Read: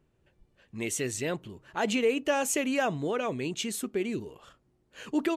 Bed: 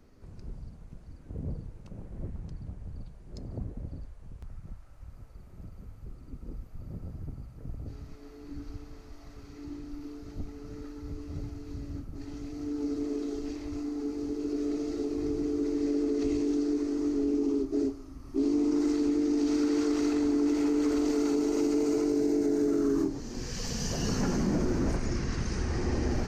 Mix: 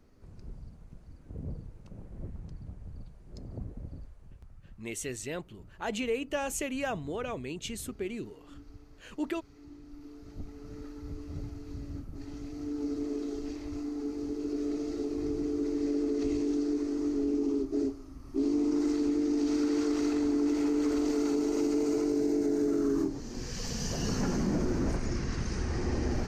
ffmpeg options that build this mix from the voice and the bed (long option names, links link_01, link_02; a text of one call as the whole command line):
ffmpeg -i stem1.wav -i stem2.wav -filter_complex "[0:a]adelay=4050,volume=-5.5dB[link_01];[1:a]volume=4.5dB,afade=type=out:start_time=3.98:duration=0.56:silence=0.501187,afade=type=in:start_time=9.79:duration=1.04:silence=0.421697[link_02];[link_01][link_02]amix=inputs=2:normalize=0" out.wav